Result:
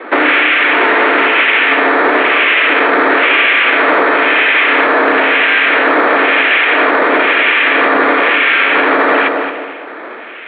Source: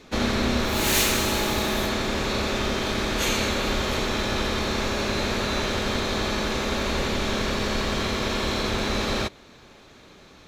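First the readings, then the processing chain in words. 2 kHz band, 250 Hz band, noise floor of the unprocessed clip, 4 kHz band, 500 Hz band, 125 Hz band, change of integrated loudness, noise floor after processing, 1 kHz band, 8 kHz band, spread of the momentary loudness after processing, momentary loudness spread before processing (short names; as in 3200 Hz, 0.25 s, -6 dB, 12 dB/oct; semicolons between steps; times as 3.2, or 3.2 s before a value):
+21.5 dB, +8.5 dB, -50 dBFS, +8.5 dB, +13.5 dB, under -15 dB, +15.5 dB, -28 dBFS, +17.5 dB, under -35 dB, 2 LU, 4 LU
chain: bell 2000 Hz +14.5 dB 1.9 oct; harmonic tremolo 1 Hz, depth 100%, crossover 1800 Hz; added harmonics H 5 -17 dB, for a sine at -8.5 dBFS; air absorption 73 m; tape echo 0.228 s, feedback 51%, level -6.5 dB, low-pass 1100 Hz; careless resampling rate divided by 8×, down none, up hold; mistuned SSB +63 Hz 210–2700 Hz; maximiser +17 dB; gain -1 dB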